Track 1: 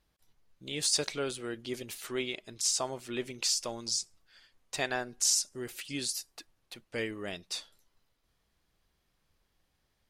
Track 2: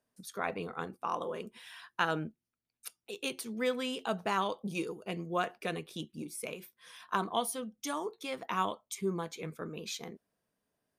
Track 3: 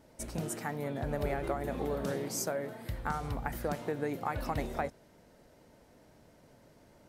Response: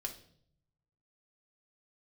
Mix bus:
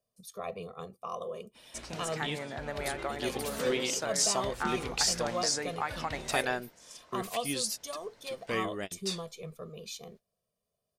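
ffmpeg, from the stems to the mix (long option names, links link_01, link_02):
-filter_complex "[0:a]adelay=1550,volume=1.5dB[link_01];[1:a]equalizer=frequency=1700:width=2:gain=-14,aecho=1:1:1.7:0.84,volume=-3.5dB,asplit=2[link_02][link_03];[2:a]lowpass=6100,tiltshelf=frequency=750:gain=-7.5,adelay=1550,volume=-0.5dB[link_04];[link_03]apad=whole_len=513324[link_05];[link_01][link_05]sidechaingate=range=-33dB:threshold=-53dB:ratio=16:detection=peak[link_06];[link_06][link_02][link_04]amix=inputs=3:normalize=0"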